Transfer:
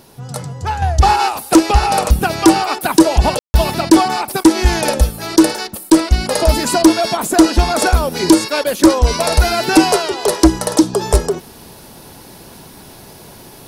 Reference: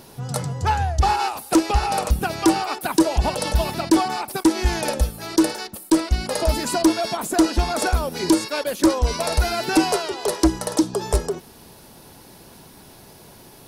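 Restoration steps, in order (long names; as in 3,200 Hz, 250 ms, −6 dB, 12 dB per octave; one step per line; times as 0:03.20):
ambience match 0:03.39–0:03.54
level correction −7.5 dB, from 0:00.82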